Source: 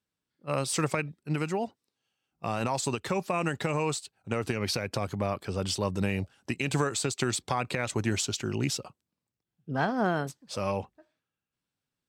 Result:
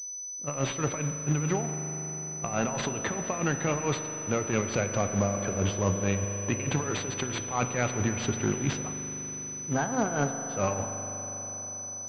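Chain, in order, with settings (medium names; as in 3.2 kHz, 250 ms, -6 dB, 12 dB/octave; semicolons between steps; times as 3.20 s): in parallel at +2.5 dB: compressor with a negative ratio -32 dBFS, ratio -0.5; on the sum: overload inside the chain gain 16.5 dB; flange 1 Hz, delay 9 ms, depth 5.9 ms, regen -86%; short-mantissa float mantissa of 2-bit; tremolo 4.6 Hz, depth 77%; on a send at -6.5 dB: reverberation RT60 5.3 s, pre-delay 40 ms; on the sum: class-D stage that switches slowly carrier 6 kHz; trim +4 dB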